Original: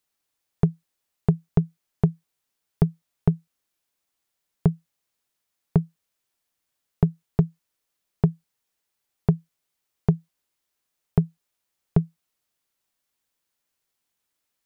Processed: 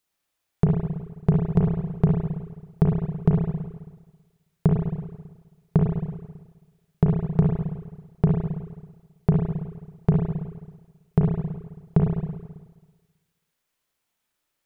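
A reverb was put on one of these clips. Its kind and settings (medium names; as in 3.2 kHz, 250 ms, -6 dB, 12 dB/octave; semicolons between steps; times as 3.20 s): spring tank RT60 1.3 s, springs 33/54 ms, chirp 50 ms, DRR -1.5 dB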